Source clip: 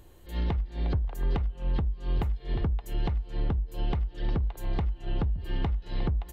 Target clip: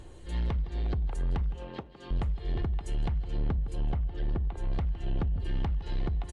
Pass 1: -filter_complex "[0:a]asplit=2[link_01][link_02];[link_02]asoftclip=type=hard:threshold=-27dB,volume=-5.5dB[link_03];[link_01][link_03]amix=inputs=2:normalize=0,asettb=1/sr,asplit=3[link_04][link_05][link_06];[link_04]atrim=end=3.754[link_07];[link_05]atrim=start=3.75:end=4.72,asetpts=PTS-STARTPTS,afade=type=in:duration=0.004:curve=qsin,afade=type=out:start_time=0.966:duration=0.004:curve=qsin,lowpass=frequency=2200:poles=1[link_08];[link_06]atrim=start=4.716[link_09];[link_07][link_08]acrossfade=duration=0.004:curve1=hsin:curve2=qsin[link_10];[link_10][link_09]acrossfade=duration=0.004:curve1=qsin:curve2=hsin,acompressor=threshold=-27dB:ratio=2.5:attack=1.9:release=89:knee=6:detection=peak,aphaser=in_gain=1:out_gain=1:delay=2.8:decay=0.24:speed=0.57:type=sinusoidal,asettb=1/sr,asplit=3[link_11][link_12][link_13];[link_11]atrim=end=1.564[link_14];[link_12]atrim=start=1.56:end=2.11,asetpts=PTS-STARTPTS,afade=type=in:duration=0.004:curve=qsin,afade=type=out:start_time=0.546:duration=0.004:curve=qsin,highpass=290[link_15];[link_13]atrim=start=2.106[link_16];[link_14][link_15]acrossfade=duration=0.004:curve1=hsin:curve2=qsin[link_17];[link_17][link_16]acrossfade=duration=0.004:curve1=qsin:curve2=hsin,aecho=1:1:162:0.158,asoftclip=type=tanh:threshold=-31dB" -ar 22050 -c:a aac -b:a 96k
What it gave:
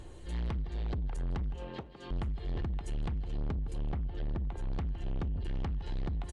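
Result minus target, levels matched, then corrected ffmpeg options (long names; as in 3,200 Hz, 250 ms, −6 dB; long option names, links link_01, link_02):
soft clipping: distortion +9 dB
-filter_complex "[0:a]asplit=2[link_01][link_02];[link_02]asoftclip=type=hard:threshold=-27dB,volume=-5.5dB[link_03];[link_01][link_03]amix=inputs=2:normalize=0,asettb=1/sr,asplit=3[link_04][link_05][link_06];[link_04]atrim=end=3.754[link_07];[link_05]atrim=start=3.75:end=4.72,asetpts=PTS-STARTPTS,afade=type=in:duration=0.004:curve=qsin,afade=type=out:start_time=0.966:duration=0.004:curve=qsin,lowpass=frequency=2200:poles=1[link_08];[link_06]atrim=start=4.716[link_09];[link_07][link_08]acrossfade=duration=0.004:curve1=hsin:curve2=qsin[link_10];[link_10][link_09]acrossfade=duration=0.004:curve1=qsin:curve2=hsin,acompressor=threshold=-27dB:ratio=2.5:attack=1.9:release=89:knee=6:detection=peak,aphaser=in_gain=1:out_gain=1:delay=2.8:decay=0.24:speed=0.57:type=sinusoidal,asettb=1/sr,asplit=3[link_11][link_12][link_13];[link_11]atrim=end=1.564[link_14];[link_12]atrim=start=1.56:end=2.11,asetpts=PTS-STARTPTS,afade=type=in:duration=0.004:curve=qsin,afade=type=out:start_time=0.546:duration=0.004:curve=qsin,highpass=290[link_15];[link_13]atrim=start=2.106[link_16];[link_14][link_15]acrossfade=duration=0.004:curve1=hsin:curve2=qsin[link_17];[link_17][link_16]acrossfade=duration=0.004:curve1=qsin:curve2=hsin,aecho=1:1:162:0.158,asoftclip=type=tanh:threshold=-23.5dB" -ar 22050 -c:a aac -b:a 96k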